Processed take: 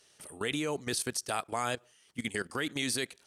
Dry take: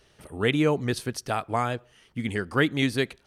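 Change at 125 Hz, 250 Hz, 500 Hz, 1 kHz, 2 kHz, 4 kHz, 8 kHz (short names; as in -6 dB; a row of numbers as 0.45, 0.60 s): -14.0, -10.5, -9.5, -6.5, -6.5, -3.0, +6.0 dB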